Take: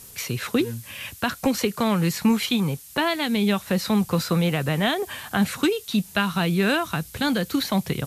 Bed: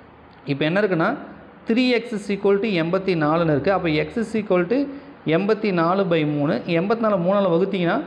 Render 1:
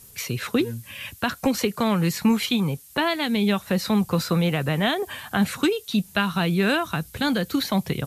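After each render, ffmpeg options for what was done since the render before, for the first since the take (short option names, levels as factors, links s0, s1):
-af "afftdn=nr=6:nf=-45"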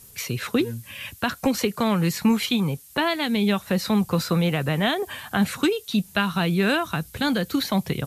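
-af anull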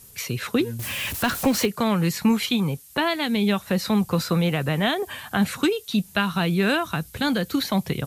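-filter_complex "[0:a]asettb=1/sr,asplit=3[s0][s1][s2];[s0]atrim=end=0.794[s3];[s1]atrim=start=0.79:end=1.66,asetpts=PTS-STARTPTS,afade=t=in:d=0.004:c=qsin,afade=t=out:st=0.866:d=0.004:c=qsin,aeval=exprs='val(0)+0.5*0.0473*sgn(val(0))':c=same[s4];[s2]atrim=start=1.656[s5];[s3][s4]acrossfade=d=0.004:c1=hsin:c2=qsin[s6];[s6][s5]acrossfade=d=0.004:c1=qsin:c2=hsin"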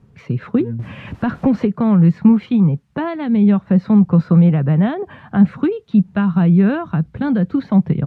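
-af "lowpass=1400,equalizer=f=170:w=1:g=12"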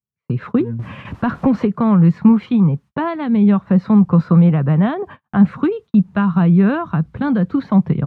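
-af "agate=range=0.00562:threshold=0.02:ratio=16:detection=peak,equalizer=f=1100:t=o:w=0.61:g=6"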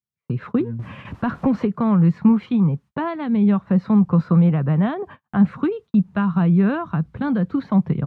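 -af "volume=0.631"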